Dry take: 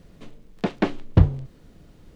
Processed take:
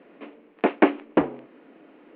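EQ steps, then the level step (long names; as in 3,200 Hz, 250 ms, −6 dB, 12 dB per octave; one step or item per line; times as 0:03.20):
elliptic band-pass filter 270–2,600 Hz, stop band 40 dB
+7.0 dB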